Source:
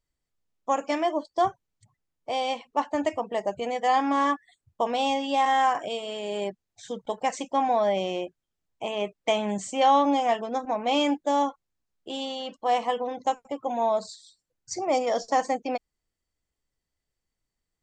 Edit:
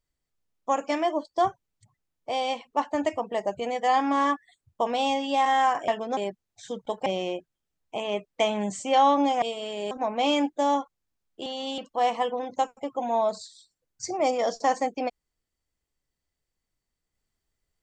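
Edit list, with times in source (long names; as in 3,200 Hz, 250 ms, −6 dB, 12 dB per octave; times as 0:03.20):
0:05.88–0:06.37: swap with 0:10.30–0:10.59
0:07.26–0:07.94: remove
0:12.14–0:12.46: reverse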